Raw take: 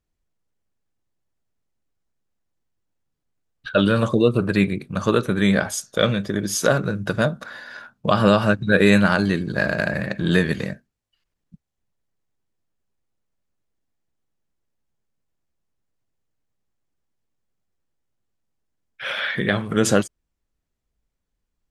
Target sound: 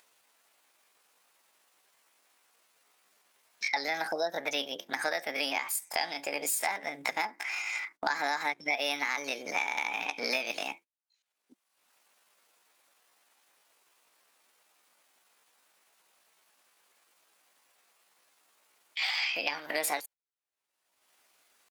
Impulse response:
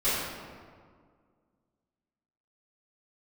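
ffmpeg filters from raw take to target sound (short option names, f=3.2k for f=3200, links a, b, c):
-af "highpass=610,acompressor=threshold=-34dB:ratio=5,asetrate=62367,aresample=44100,atempo=0.707107,agate=range=-23dB:threshold=-54dB:ratio=16:detection=peak,acompressor=mode=upward:threshold=-42dB:ratio=2.5,volume=5dB"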